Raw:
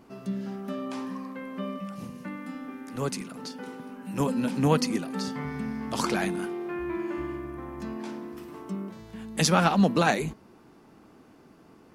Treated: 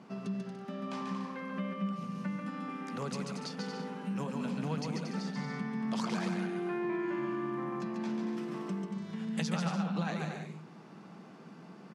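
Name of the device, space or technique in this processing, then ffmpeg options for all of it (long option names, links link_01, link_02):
jukebox: -af "highpass=frequency=200:width=0.5412,highpass=frequency=200:width=1.3066,lowpass=6300,lowshelf=frequency=220:width_type=q:width=3:gain=7.5,acompressor=threshold=-38dB:ratio=4,aecho=1:1:140|231|290.2|328.6|353.6:0.631|0.398|0.251|0.158|0.1,volume=1.5dB"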